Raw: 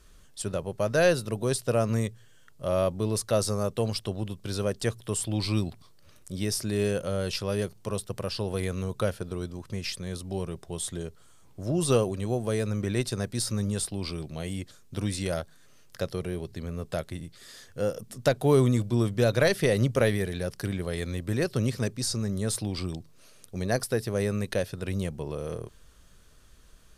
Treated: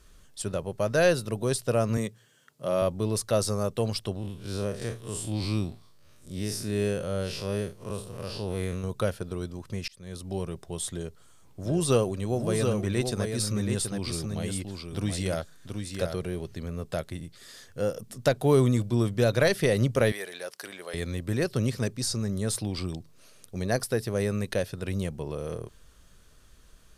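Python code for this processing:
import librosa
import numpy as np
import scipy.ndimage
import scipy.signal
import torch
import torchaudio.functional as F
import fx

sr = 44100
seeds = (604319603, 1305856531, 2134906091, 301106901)

y = fx.highpass(x, sr, hz=130.0, slope=24, at=(1.97, 2.82))
y = fx.spec_blur(y, sr, span_ms=102.0, at=(4.16, 8.84))
y = fx.echo_single(y, sr, ms=727, db=-5.5, at=(11.63, 16.66), fade=0.02)
y = fx.highpass(y, sr, hz=610.0, slope=12, at=(20.12, 20.94))
y = fx.edit(y, sr, fx.fade_in_span(start_s=9.88, length_s=0.4), tone=tone)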